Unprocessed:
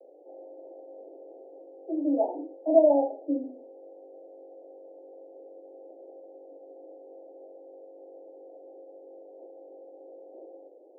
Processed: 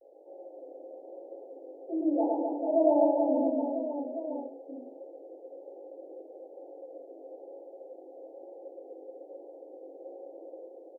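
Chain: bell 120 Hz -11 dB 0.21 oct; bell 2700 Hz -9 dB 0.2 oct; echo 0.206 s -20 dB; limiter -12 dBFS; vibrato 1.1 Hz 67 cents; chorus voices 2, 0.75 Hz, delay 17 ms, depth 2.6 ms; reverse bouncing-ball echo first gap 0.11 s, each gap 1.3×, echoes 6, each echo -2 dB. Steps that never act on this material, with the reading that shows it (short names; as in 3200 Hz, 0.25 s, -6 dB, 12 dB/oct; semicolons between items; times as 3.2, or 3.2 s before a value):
bell 120 Hz: input band starts at 240 Hz; bell 2700 Hz: input band ends at 910 Hz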